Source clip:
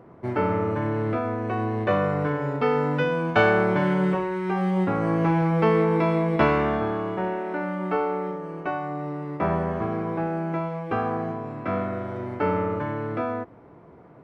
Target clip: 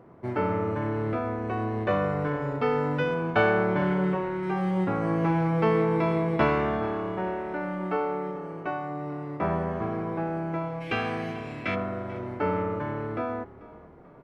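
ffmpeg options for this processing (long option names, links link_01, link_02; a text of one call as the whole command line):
ffmpeg -i in.wav -filter_complex "[0:a]asettb=1/sr,asplit=3[link_01][link_02][link_03];[link_01]atrim=end=3.144[link_04];[link_02]atrim=start=3.14:end=4.43,asetpts=PTS-STARTPTS,afade=type=in:duration=0.004:curve=qsin,afade=type=out:start_time=1.286:duration=0.004:curve=qsin,lowpass=frequency=3900:poles=1[link_05];[link_03]atrim=start=4.426[link_06];[link_04][link_05]acrossfade=duration=0.004:curve1=hsin:curve2=qsin[link_07];[link_07][link_06]acrossfade=duration=0.004:curve1=qsin:curve2=hsin,asplit=3[link_08][link_09][link_10];[link_08]afade=type=out:start_time=10.8:duration=0.02[link_11];[link_09]highshelf=frequency=1700:width_type=q:width=1.5:gain=13.5,afade=type=in:start_time=10.8:duration=0.02,afade=type=out:start_time=11.74:duration=0.02[link_12];[link_10]afade=type=in:start_time=11.74:duration=0.02[link_13];[link_11][link_12][link_13]amix=inputs=3:normalize=0,asplit=4[link_14][link_15][link_16][link_17];[link_15]adelay=439,afreqshift=-36,volume=-19dB[link_18];[link_16]adelay=878,afreqshift=-72,volume=-26.5dB[link_19];[link_17]adelay=1317,afreqshift=-108,volume=-34.1dB[link_20];[link_14][link_18][link_19][link_20]amix=inputs=4:normalize=0,volume=-3dB" out.wav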